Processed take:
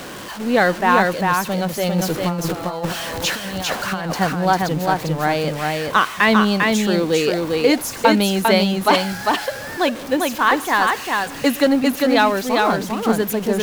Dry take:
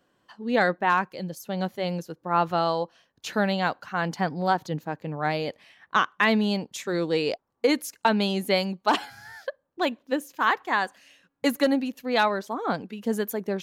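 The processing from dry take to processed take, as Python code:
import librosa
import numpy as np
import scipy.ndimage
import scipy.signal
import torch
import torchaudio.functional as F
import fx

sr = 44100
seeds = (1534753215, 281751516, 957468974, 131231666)

y = x + 0.5 * 10.0 ** (-33.0 / 20.0) * np.sign(x)
y = fx.over_compress(y, sr, threshold_db=-29.0, ratio=-0.5, at=(1.98, 4.11))
y = y + 10.0 ** (-3.0 / 20.0) * np.pad(y, (int(399 * sr / 1000.0), 0))[:len(y)]
y = F.gain(torch.from_numpy(y), 5.5).numpy()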